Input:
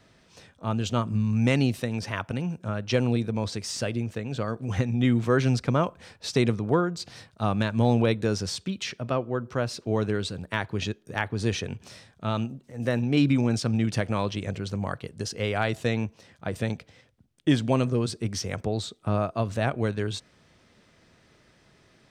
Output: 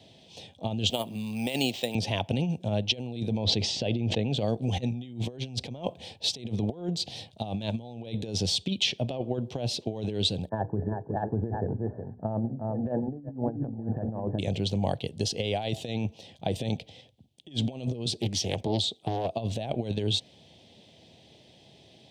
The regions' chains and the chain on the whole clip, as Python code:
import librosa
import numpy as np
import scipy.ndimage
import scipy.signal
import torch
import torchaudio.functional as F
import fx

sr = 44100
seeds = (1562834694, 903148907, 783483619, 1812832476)

y = fx.chain(x, sr, fx.weighting(curve='A'),
    fx.resample_bad(factor=4, down='none', up='hold'), at=(0.9, 1.95))
y = fx.chain(y, sr, fx.air_absorb(metres=150.0),
    fx.sustainer(db_per_s=45.0), at=(3.38, 4.33))
y = fx.chain(y, sr, fx.brickwall_lowpass(high_hz=1800.0),
    fx.hum_notches(base_hz=60, count=9),
    fx.echo_single(ms=365, db=-8.0), at=(10.49, 14.39))
y = fx.chain(y, sr, fx.low_shelf(hz=400.0, db=-3.5),
    fx.doppler_dist(depth_ms=0.78), at=(18.08, 19.37))
y = scipy.signal.sosfilt(scipy.signal.butter(4, 73.0, 'highpass', fs=sr, output='sos'), y)
y = fx.over_compress(y, sr, threshold_db=-29.0, ratio=-0.5)
y = fx.curve_eq(y, sr, hz=(430.0, 800.0, 1300.0, 3300.0, 5200.0, 9900.0), db=(0, 4, -23, 9, -1, -4))